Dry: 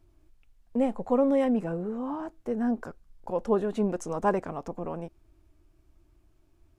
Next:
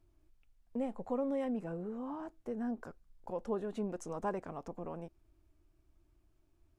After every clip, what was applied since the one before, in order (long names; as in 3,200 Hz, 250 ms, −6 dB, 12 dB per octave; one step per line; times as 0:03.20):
downward compressor 1.5 to 1, threshold −30 dBFS, peak gain reduction 4.5 dB
level −7.5 dB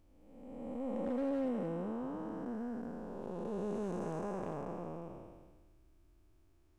spectrum smeared in time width 655 ms
hard clipping −34.5 dBFS, distortion −25 dB
level +5 dB